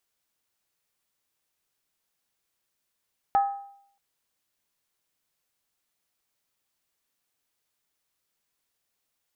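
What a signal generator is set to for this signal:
struck skin, lowest mode 798 Hz, decay 0.67 s, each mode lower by 12 dB, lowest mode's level −16 dB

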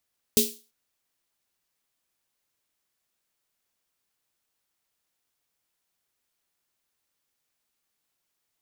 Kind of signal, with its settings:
synth snare length 0.34 s, tones 230 Hz, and 420 Hz, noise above 3,200 Hz, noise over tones 2.5 dB, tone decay 0.28 s, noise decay 0.34 s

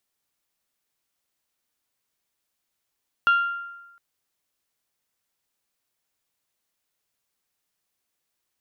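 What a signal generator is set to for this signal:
struck glass bell, length 0.71 s, lowest mode 1,390 Hz, decay 1.09 s, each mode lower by 11.5 dB, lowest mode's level −13.5 dB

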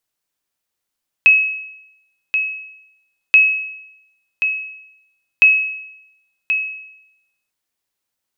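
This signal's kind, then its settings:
ping with an echo 2,570 Hz, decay 0.86 s, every 2.08 s, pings 3, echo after 1.08 s, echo −8.5 dB −3.5 dBFS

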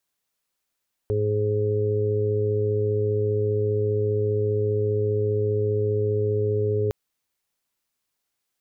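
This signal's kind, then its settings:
steady harmonic partials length 5.81 s, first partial 105 Hz, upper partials −15/−13.5/1.5/−11 dB, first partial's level −24 dB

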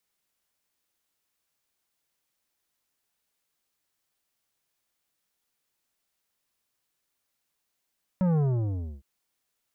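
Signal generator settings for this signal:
bass drop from 190 Hz, over 0.81 s, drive 11 dB, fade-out 0.64 s, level −22 dB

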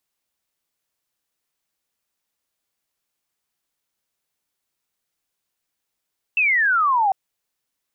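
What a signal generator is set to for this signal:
single falling chirp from 2,700 Hz, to 750 Hz, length 0.75 s sine, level −15 dB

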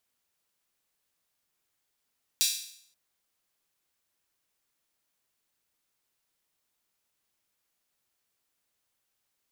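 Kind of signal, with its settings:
open synth hi-hat length 0.53 s, high-pass 3,900 Hz, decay 0.64 s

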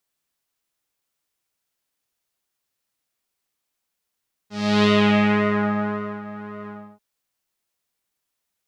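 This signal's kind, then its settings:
subtractive patch with pulse-width modulation G#3, interval +19 semitones, detune 19 cents, sub −13.5 dB, filter lowpass, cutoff 960 Hz, Q 1.9, filter envelope 2.5 octaves, filter decay 1.20 s, filter sustain 25%, attack 345 ms, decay 1.37 s, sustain −19.5 dB, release 0.32 s, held 2.17 s, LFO 1.8 Hz, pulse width 34%, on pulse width 9%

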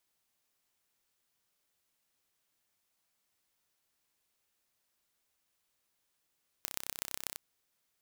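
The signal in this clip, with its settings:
impulse train 32.4 per second, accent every 4, −7 dBFS 0.72 s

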